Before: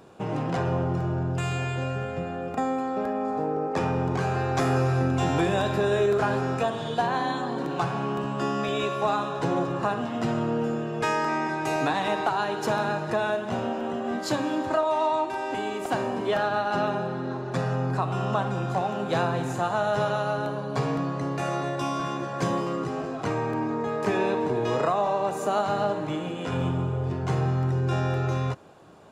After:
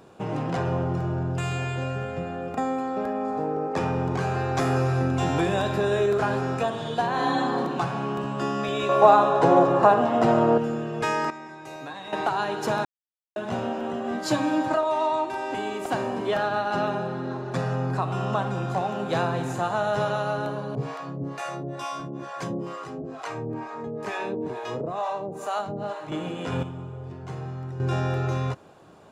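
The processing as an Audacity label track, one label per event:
7.130000	7.560000	reverb throw, RT60 1.1 s, DRR -2 dB
8.890000	10.580000	bell 670 Hz +12 dB 2.2 oct
11.300000	12.130000	resonator 540 Hz, decay 0.28 s, mix 80%
12.850000	13.360000	mute
14.240000	14.740000	comb 6.4 ms
20.750000	26.120000	harmonic tremolo 2.2 Hz, depth 100%, crossover 550 Hz
26.630000	27.800000	gain -9.5 dB

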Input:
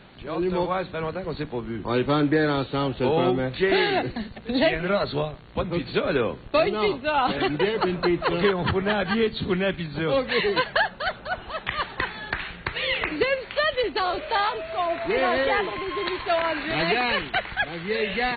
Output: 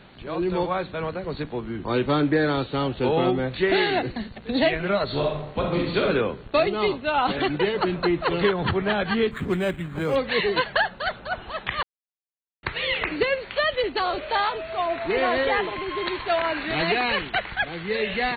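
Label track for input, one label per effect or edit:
5.050000	6.010000	reverb throw, RT60 0.81 s, DRR -0.5 dB
9.310000	10.160000	decimation joined by straight lines rate divided by 8×
11.830000	12.630000	mute

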